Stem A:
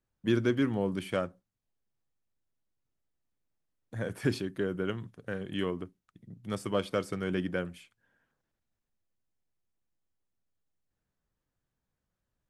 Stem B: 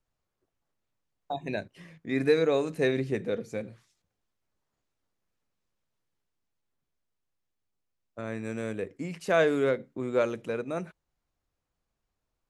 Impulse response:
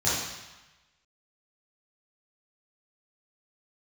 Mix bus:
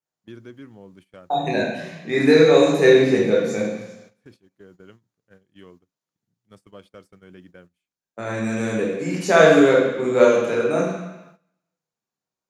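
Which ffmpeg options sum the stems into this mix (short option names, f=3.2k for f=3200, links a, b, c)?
-filter_complex "[0:a]volume=-14dB[a];[1:a]highpass=f=160:w=0.5412,highpass=f=160:w=1.3066,highshelf=f=3.6k:g=4,volume=1dB,asplit=3[b][c][d];[c]volume=-4dB[e];[d]apad=whole_len=551238[f];[a][f]sidechaincompress=threshold=-38dB:ratio=16:attack=6.4:release=1210[g];[2:a]atrim=start_sample=2205[h];[e][h]afir=irnorm=-1:irlink=0[i];[g][b][i]amix=inputs=3:normalize=0,agate=range=-15dB:threshold=-48dB:ratio=16:detection=peak"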